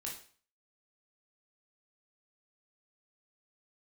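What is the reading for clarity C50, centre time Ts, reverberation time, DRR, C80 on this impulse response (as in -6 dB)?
5.5 dB, 31 ms, 0.45 s, -2.5 dB, 11.0 dB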